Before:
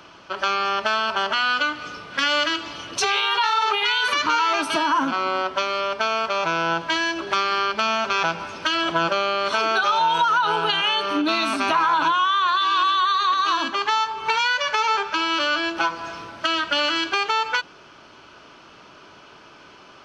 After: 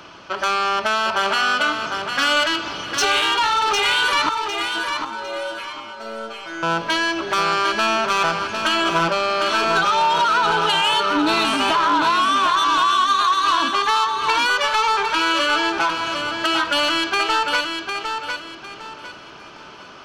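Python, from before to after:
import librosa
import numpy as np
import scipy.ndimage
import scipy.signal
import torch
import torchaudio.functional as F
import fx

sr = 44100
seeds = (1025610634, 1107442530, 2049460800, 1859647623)

y = 10.0 ** (-18.0 / 20.0) * np.tanh(x / 10.0 ** (-18.0 / 20.0))
y = fx.stiff_resonator(y, sr, f0_hz=110.0, decay_s=0.47, stiffness=0.002, at=(4.29, 6.63))
y = fx.echo_feedback(y, sr, ms=754, feedback_pct=30, wet_db=-6.0)
y = y * 10.0 ** (4.5 / 20.0)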